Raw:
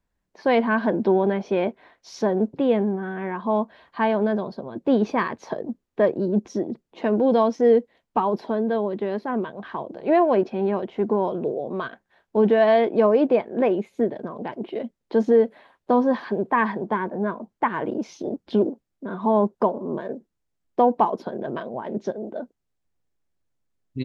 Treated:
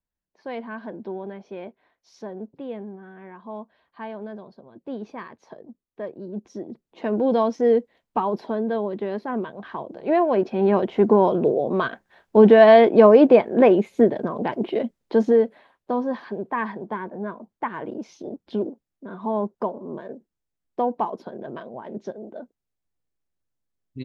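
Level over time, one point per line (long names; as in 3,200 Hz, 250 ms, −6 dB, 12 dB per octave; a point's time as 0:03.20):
0:06.11 −13.5 dB
0:07.22 −1.5 dB
0:10.33 −1.5 dB
0:10.77 +6 dB
0:14.71 +6 dB
0:15.91 −5.5 dB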